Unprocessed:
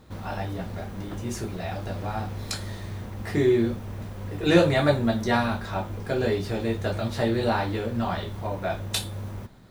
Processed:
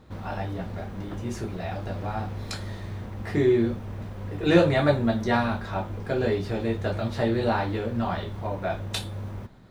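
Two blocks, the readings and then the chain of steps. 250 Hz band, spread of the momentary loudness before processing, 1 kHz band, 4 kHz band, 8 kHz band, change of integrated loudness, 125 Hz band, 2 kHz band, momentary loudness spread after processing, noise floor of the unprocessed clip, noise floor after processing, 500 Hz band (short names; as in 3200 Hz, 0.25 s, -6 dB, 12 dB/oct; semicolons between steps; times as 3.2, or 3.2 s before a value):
0.0 dB, 14 LU, 0.0 dB, -3.0 dB, n/a, -0.5 dB, 0.0 dB, -1.0 dB, 14 LU, -38 dBFS, -38 dBFS, 0.0 dB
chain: high shelf 5600 Hz -10 dB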